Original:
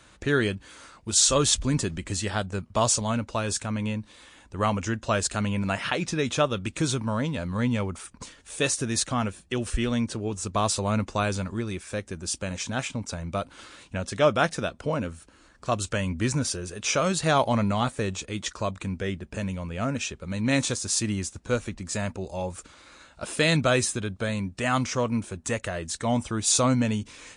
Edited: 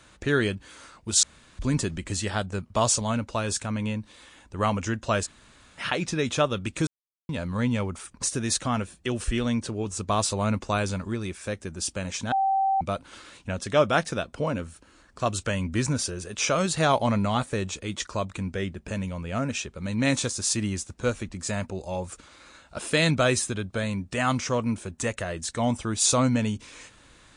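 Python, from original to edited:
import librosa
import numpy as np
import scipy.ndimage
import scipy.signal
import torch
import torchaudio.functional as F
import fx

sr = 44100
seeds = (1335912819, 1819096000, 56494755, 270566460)

y = fx.edit(x, sr, fx.room_tone_fill(start_s=1.23, length_s=0.36),
    fx.room_tone_fill(start_s=5.25, length_s=0.54, crossfade_s=0.04),
    fx.silence(start_s=6.87, length_s=0.42),
    fx.cut(start_s=8.23, length_s=0.46),
    fx.bleep(start_s=12.78, length_s=0.49, hz=776.0, db=-20.0), tone=tone)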